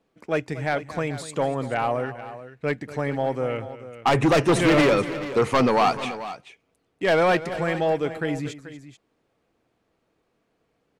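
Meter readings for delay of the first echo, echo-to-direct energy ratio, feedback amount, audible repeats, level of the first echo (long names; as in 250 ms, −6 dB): 239 ms, −11.5 dB, repeats not evenly spaced, 2, −15.5 dB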